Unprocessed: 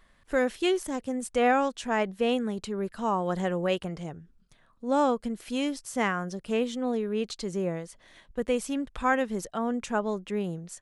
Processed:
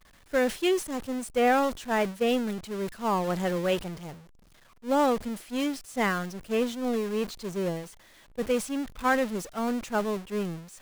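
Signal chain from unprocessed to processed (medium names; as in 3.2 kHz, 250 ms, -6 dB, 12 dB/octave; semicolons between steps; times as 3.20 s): jump at every zero crossing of -28.5 dBFS; expander -23 dBFS; trim -1 dB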